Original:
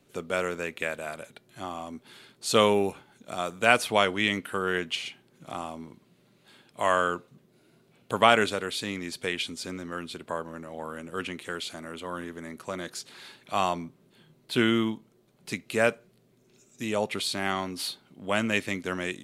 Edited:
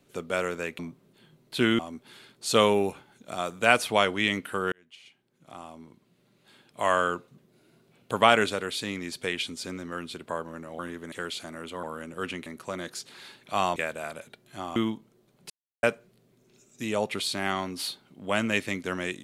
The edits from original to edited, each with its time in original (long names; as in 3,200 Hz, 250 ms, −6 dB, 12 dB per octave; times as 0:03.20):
0:00.79–0:01.79: swap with 0:13.76–0:14.76
0:04.72–0:06.91: fade in
0:10.79–0:11.42: swap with 0:12.13–0:12.46
0:15.50–0:15.83: silence